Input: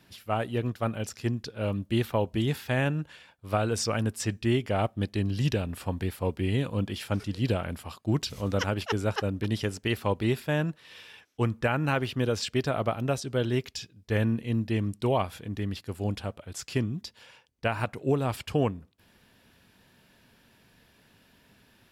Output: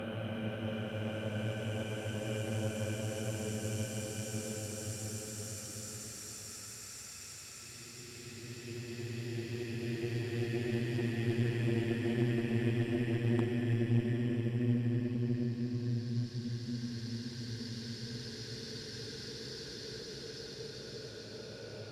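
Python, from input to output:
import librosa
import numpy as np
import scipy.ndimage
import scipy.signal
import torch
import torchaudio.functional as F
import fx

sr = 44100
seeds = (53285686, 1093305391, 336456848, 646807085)

y = fx.paulstretch(x, sr, seeds[0], factor=38.0, window_s=0.25, from_s=0.95)
y = fx.cheby_harmonics(y, sr, harmonics=(2, 4, 6), levels_db=(-16, -12, -26), full_scale_db=-14.5)
y = F.gain(torch.from_numpy(y), -4.5).numpy()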